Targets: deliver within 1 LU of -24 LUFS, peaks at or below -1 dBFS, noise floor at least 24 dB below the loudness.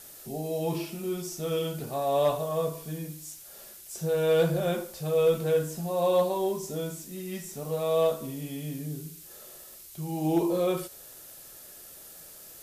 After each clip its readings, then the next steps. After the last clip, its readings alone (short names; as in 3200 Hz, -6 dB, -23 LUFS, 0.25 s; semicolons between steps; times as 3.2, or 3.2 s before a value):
noise floor -48 dBFS; noise floor target -53 dBFS; loudness -29.0 LUFS; peak -14.5 dBFS; loudness target -24.0 LUFS
-> denoiser 6 dB, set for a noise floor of -48 dBFS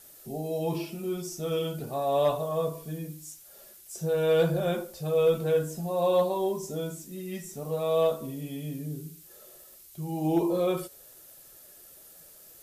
noise floor -52 dBFS; noise floor target -53 dBFS
-> denoiser 6 dB, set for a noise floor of -52 dBFS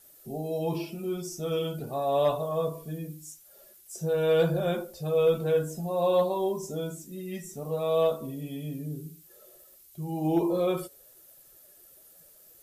noise floor -56 dBFS; loudness -29.0 LUFS; peak -15.0 dBFS; loudness target -24.0 LUFS
-> gain +5 dB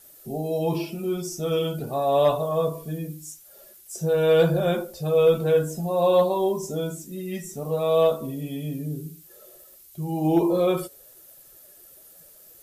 loudness -24.0 LUFS; peak -10.0 dBFS; noise floor -51 dBFS